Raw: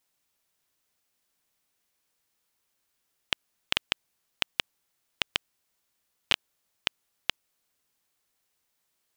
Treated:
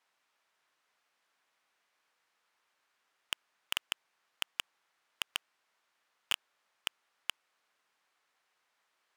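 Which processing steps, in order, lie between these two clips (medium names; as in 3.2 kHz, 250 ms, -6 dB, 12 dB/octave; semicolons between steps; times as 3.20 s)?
band-pass filter 1.3 kHz, Q 0.86; hard clipper -26.5 dBFS, distortion -2 dB; trim +8.5 dB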